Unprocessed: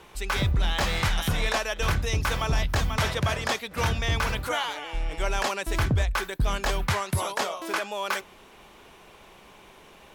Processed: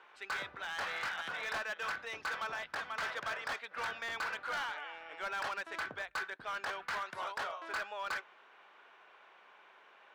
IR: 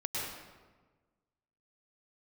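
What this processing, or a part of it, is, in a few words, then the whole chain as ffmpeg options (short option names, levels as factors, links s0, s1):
megaphone: -af "highpass=620,lowpass=2900,equalizer=f=1500:t=o:w=0.54:g=8,asoftclip=type=hard:threshold=0.0562,volume=0.376"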